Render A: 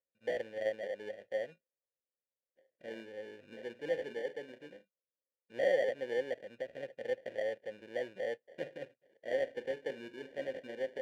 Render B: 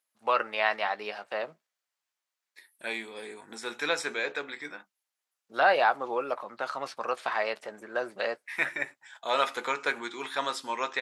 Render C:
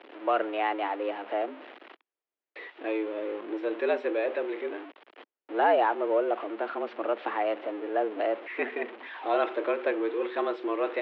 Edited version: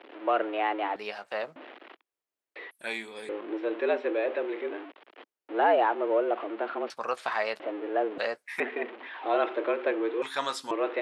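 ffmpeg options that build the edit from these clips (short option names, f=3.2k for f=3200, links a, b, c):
-filter_complex "[1:a]asplit=5[a][b][c][d][e];[2:a]asplit=6[f][g][h][i][j][k];[f]atrim=end=0.962[l];[a]atrim=start=0.958:end=1.562[m];[g]atrim=start=1.558:end=2.712[n];[b]atrim=start=2.708:end=3.292[o];[h]atrim=start=3.288:end=6.902[p];[c]atrim=start=6.898:end=7.602[q];[i]atrim=start=7.598:end=8.182[r];[d]atrim=start=8.178:end=8.602[s];[j]atrim=start=8.598:end=10.222[t];[e]atrim=start=10.218:end=10.712[u];[k]atrim=start=10.708[v];[l][m]acrossfade=d=0.004:c1=hsin:c2=hsin[w];[w][n]acrossfade=d=0.004:c1=hsin:c2=hsin[x];[x][o]acrossfade=d=0.004:c1=hsin:c2=hsin[y];[y][p]acrossfade=d=0.004:c1=hsin:c2=hsin[z];[z][q]acrossfade=d=0.004:c1=hsin:c2=hsin[aa];[aa][r]acrossfade=d=0.004:c1=hsin:c2=hsin[ab];[ab][s]acrossfade=d=0.004:c1=hsin:c2=hsin[ac];[ac][t]acrossfade=d=0.004:c1=hsin:c2=hsin[ad];[ad][u]acrossfade=d=0.004:c1=hsin:c2=hsin[ae];[ae][v]acrossfade=d=0.004:c1=hsin:c2=hsin"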